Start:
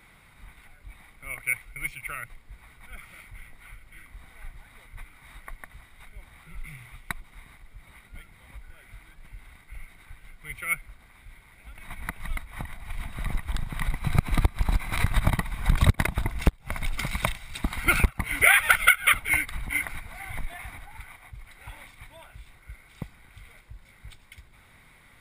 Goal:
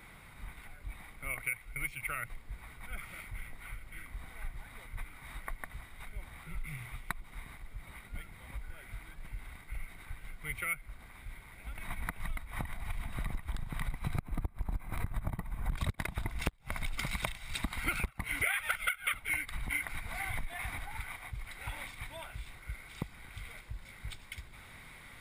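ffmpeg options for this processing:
ffmpeg -i in.wav -af "asetnsamples=nb_out_samples=441:pad=0,asendcmd='14.2 equalizer g -14;15.72 equalizer g 2',equalizer=frequency=4300:width_type=o:width=2.7:gain=-2.5,acompressor=threshold=-36dB:ratio=4,volume=2.5dB" out.wav

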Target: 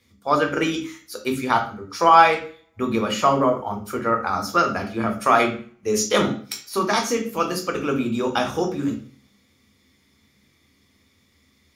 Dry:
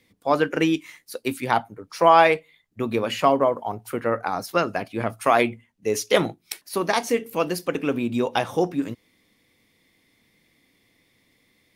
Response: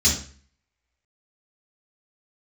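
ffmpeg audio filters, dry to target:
-filter_complex "[0:a]equalizer=frequency=1300:width_type=o:width=0.37:gain=9,asplit=2[link_01][link_02];[1:a]atrim=start_sample=2205,highshelf=frequency=9700:gain=7[link_03];[link_02][link_03]afir=irnorm=-1:irlink=0,volume=-16.5dB[link_04];[link_01][link_04]amix=inputs=2:normalize=0,volume=-1dB"

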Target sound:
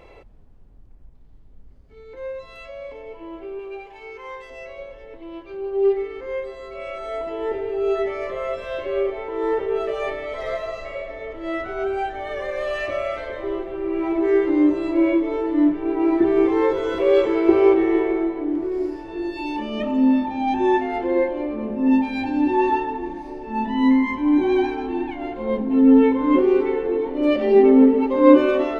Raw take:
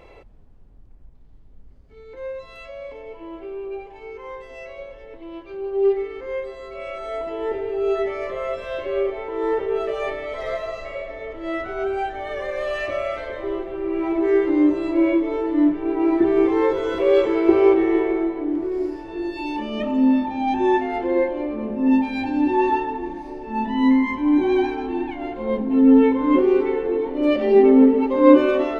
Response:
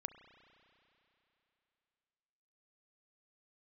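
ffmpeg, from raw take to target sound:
-filter_complex "[0:a]asettb=1/sr,asplit=3[link_01][link_02][link_03];[link_01]atrim=end=3.594[link_04];[link_02]atrim=start=3.59:end=4.5,asetpts=PTS-STARTPTS,afade=type=in:duration=0.004:curve=qsin,afade=type=out:start_time=0.906:duration=0.004:curve=qsin,tiltshelf=frequency=790:gain=-5.5[link_05];[link_03]atrim=start=4.496[link_06];[link_04][link_05]acrossfade=duration=0.004:curve1=hsin:curve2=qsin[link_07];[link_07][link_06]acrossfade=duration=0.004:curve1=qsin:curve2=hsin"

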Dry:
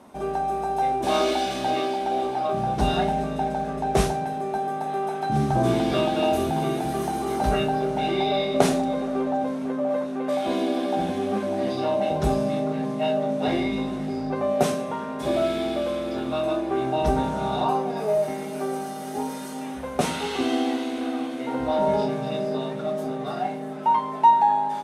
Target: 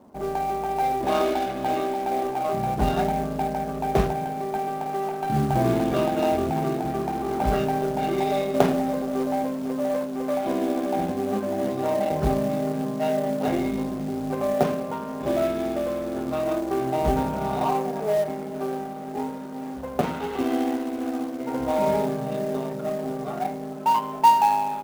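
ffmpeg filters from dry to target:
ffmpeg -i in.wav -af "adynamicsmooth=sensitivity=1.5:basefreq=920,acrusher=bits=5:mode=log:mix=0:aa=0.000001" out.wav

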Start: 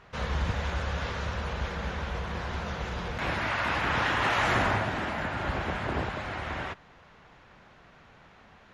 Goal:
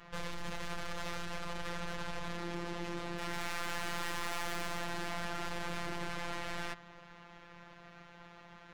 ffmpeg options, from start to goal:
ffmpeg -i in.wav -filter_complex "[0:a]asplit=3[link_01][link_02][link_03];[link_01]afade=type=out:start_time=2.36:duration=0.02[link_04];[link_02]aeval=exprs='val(0)*sin(2*PI*270*n/s)':channel_layout=same,afade=type=in:start_time=2.36:duration=0.02,afade=type=out:start_time=3.32:duration=0.02[link_05];[link_03]afade=type=in:start_time=3.32:duration=0.02[link_06];[link_04][link_05][link_06]amix=inputs=3:normalize=0,aeval=exprs='(tanh(141*val(0)+0.75)-tanh(0.75))/141':channel_layout=same,afftfilt=real='hypot(re,im)*cos(PI*b)':imag='0':win_size=1024:overlap=0.75,volume=8dB" out.wav

